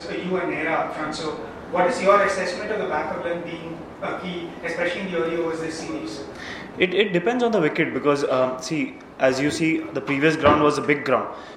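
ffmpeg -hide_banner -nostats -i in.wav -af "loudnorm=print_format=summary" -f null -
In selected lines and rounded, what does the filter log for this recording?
Input Integrated:    -22.2 LUFS
Input True Peak:      -3.6 dBTP
Input LRA:             4.9 LU
Input Threshold:     -32.5 LUFS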